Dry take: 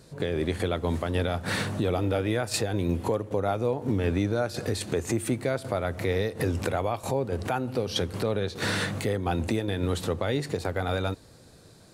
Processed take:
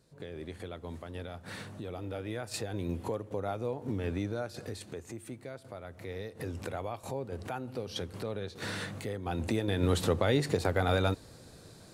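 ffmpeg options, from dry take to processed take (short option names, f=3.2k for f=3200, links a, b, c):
-af "volume=8.5dB,afade=t=in:st=1.88:d=0.95:silence=0.473151,afade=t=out:st=4.24:d=0.84:silence=0.398107,afade=t=in:st=5.91:d=0.87:silence=0.473151,afade=t=in:st=9.21:d=0.73:silence=0.316228"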